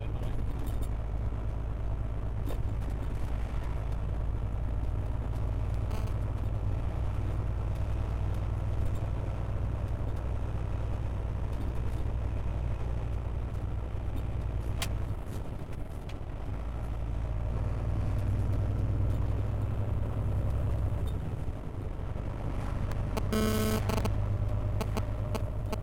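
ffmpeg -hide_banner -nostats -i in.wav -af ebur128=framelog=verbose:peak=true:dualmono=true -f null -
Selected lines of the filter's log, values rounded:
Integrated loudness:
  I:         -31.3 LUFS
  Threshold: -41.3 LUFS
Loudness range:
  LRA:         4.1 LU
  Threshold: -51.3 LUFS
  LRA low:   -33.2 LUFS
  LRA high:  -29.2 LUFS
True peak:
  Peak:      -19.5 dBFS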